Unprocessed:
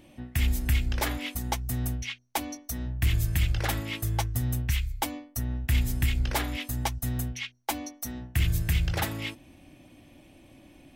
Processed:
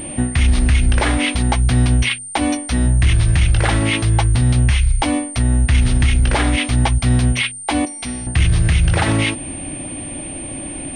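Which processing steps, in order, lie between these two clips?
7.85–8.27 resonator 80 Hz, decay 1.4 s, harmonics all, mix 80%; in parallel at -1 dB: compressor, threshold -37 dBFS, peak gain reduction 16 dB; on the sum: maximiser +23 dB; pulse-width modulation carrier 8900 Hz; gain -6 dB

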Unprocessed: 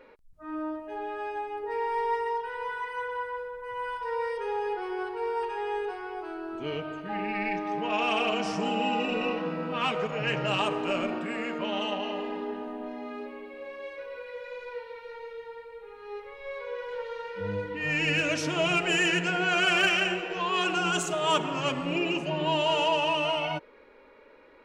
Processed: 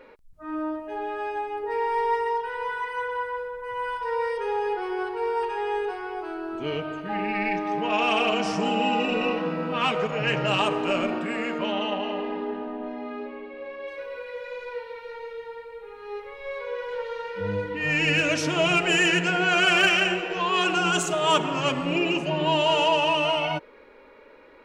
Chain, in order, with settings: 11.72–13.88 air absorption 140 m; gain +4 dB

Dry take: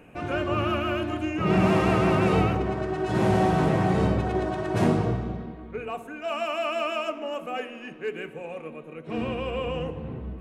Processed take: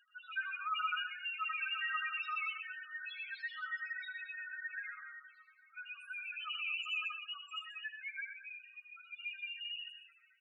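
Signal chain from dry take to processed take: random spectral dropouts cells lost 47%; steep high-pass 1400 Hz 48 dB/oct; bell 8200 Hz +4.5 dB 1.5 oct; loudest bins only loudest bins 2; tapped delay 78/89/123/223/246 ms -11/-16.5/-11/-14/-20 dB; gain +5.5 dB

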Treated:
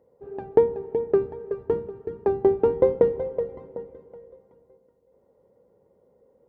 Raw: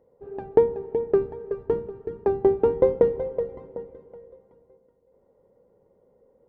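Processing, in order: HPF 51 Hz

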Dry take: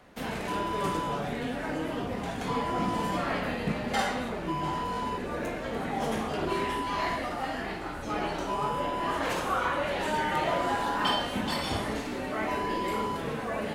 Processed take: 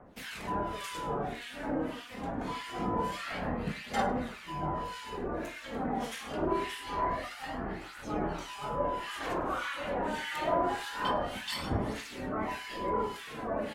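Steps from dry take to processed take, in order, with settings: harmonic tremolo 1.7 Hz, depth 100%, crossover 1500 Hz; phaser 0.25 Hz, delay 4.2 ms, feedback 34%; on a send: echo 0.102 s -19.5 dB

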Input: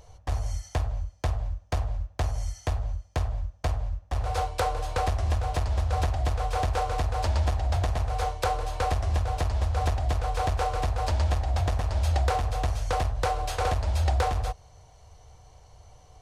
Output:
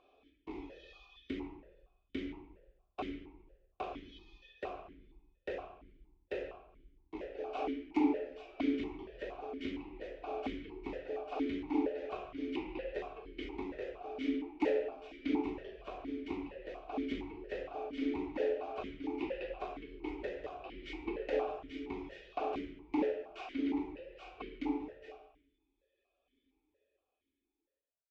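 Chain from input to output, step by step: ending faded out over 3.54 s; reverb removal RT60 1 s; reverb RT60 0.45 s, pre-delay 3 ms, DRR -0.5 dB; speed mistake 78 rpm record played at 45 rpm; speakerphone echo 0.14 s, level -13 dB; vowel sequencer 4.3 Hz; gain +2 dB

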